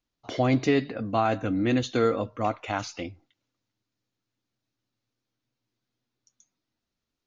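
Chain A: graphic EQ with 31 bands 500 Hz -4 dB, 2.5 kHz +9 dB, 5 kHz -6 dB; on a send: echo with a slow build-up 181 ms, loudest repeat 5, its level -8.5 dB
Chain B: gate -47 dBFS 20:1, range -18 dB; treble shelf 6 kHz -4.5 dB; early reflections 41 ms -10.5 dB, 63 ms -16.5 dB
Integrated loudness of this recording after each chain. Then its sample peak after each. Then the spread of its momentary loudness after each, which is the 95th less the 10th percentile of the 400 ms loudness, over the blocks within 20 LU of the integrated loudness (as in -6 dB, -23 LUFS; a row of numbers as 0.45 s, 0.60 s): -25.5 LUFS, -26.0 LUFS; -9.5 dBFS, -10.5 dBFS; 18 LU, 13 LU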